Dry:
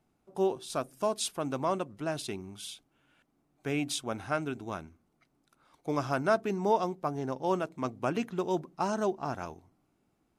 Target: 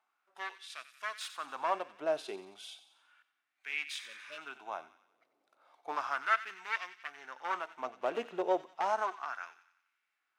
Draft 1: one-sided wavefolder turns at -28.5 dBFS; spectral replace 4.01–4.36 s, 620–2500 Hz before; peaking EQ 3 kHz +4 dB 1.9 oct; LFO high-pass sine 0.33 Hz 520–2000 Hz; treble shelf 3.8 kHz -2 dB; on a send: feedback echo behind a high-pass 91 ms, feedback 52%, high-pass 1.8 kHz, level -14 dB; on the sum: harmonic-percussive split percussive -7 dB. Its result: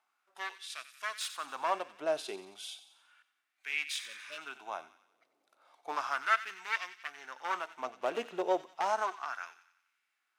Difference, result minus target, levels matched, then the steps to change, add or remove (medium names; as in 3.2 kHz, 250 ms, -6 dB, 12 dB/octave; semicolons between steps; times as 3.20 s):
8 kHz band +5.5 dB
change: treble shelf 3.8 kHz -10 dB